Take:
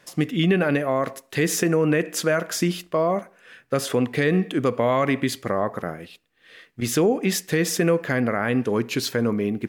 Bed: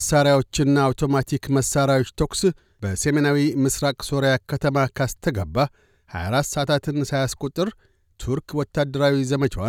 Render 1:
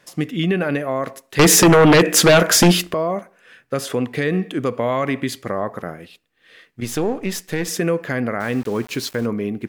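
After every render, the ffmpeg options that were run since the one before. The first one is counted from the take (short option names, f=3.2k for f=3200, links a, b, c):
-filter_complex "[0:a]asettb=1/sr,asplit=3[a][b][c];[a]atrim=end=1.394[d];[b]atrim=start=1.39:end=2.94,asetpts=PTS-STARTPTS,afade=t=in:d=0.004:c=qsin,afade=t=out:st=1.546:d=0.004:c=qsin,aeval=exprs='0.447*sin(PI/2*3.55*val(0)/0.447)':c=same[e];[c]atrim=start=2.936[f];[d][e]acrossfade=d=0.004:c1=hsin:c2=qsin[g];[g][f]acrossfade=d=0.004:c1=qsin:c2=hsin,asettb=1/sr,asplit=3[h][i][j];[h]atrim=end=6.844[k];[i]atrim=start=6.84:end=7.68,asetpts=PTS-STARTPTS,afade=t=in:d=0.004:c=qsin,afade=t=out:st=0.836:d=0.004:c=qsin,aeval=exprs='if(lt(val(0),0),0.447*val(0),val(0))':c=same[l];[j]atrim=start=7.676[m];[k][l]acrossfade=d=0.004:c1=hsin:c2=qsin[n];[n][m]acrossfade=d=0.004:c1=qsin:c2=hsin,asettb=1/sr,asplit=3[o][p][q];[o]atrim=end=8.404[r];[p]atrim=start=8.4:end=9.26,asetpts=PTS-STARTPTS,afade=t=in:d=0.004:c=qsin,afade=t=out:st=0.856:d=0.004:c=qsin,aeval=exprs='val(0)*gte(abs(val(0)),0.0188)':c=same[s];[q]atrim=start=9.256[t];[r][s]acrossfade=d=0.004:c1=hsin:c2=qsin[u];[u][t]acrossfade=d=0.004:c1=qsin:c2=hsin"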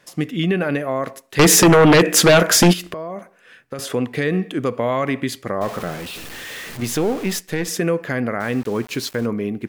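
-filter_complex "[0:a]asettb=1/sr,asplit=3[a][b][c];[a]atrim=end=2.734[d];[b]atrim=start=2.73:end=3.79,asetpts=PTS-STARTPTS,afade=t=in:d=0.004:c=qsin,afade=t=out:st=1.056:d=0.004:c=qsin,acompressor=threshold=-25dB:ratio=6:attack=3.2:release=140:knee=1:detection=peak[e];[c]atrim=start=3.786[f];[d][e]acrossfade=d=0.004:c1=hsin:c2=qsin[g];[g][f]acrossfade=d=0.004:c1=qsin:c2=hsin,asettb=1/sr,asplit=3[h][i][j];[h]atrim=end=5.614[k];[i]atrim=start=5.61:end=7.39,asetpts=PTS-STARTPTS,afade=t=in:d=0.004:c=qsin,afade=t=out:st=1.776:d=0.004:c=qsin,aeval=exprs='val(0)+0.5*0.0398*sgn(val(0))':c=same[l];[j]atrim=start=7.386[m];[k][l]acrossfade=d=0.004:c1=hsin:c2=qsin[n];[n][m]acrossfade=d=0.004:c1=qsin:c2=hsin"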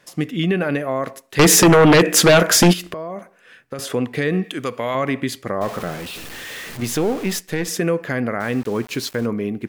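-filter_complex "[0:a]asettb=1/sr,asplit=3[a][b][c];[a]atrim=end=4.444[d];[b]atrim=start=4.44:end=4.95,asetpts=PTS-STARTPTS,afade=t=in:d=0.004:c=qsin,afade=t=out:st=0.506:d=0.004:c=qsin,tiltshelf=f=1.2k:g=-6[e];[c]atrim=start=4.946[f];[d][e]acrossfade=d=0.004:c1=hsin:c2=qsin[g];[g][f]acrossfade=d=0.004:c1=qsin:c2=hsin"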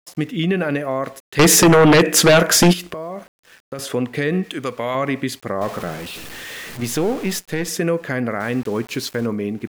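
-af "aeval=exprs='val(0)*gte(abs(val(0)),0.00562)':c=same"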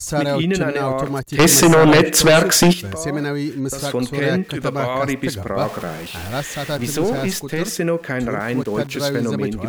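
-filter_complex "[1:a]volume=-4dB[a];[0:a][a]amix=inputs=2:normalize=0"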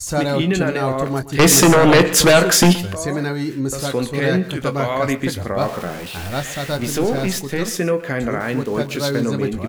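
-filter_complex "[0:a]asplit=2[a][b];[b]adelay=22,volume=-10.5dB[c];[a][c]amix=inputs=2:normalize=0,asplit=2[d][e];[e]adelay=122.4,volume=-16dB,highshelf=f=4k:g=-2.76[f];[d][f]amix=inputs=2:normalize=0"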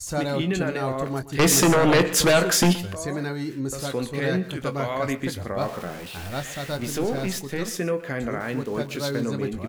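-af "volume=-6.5dB"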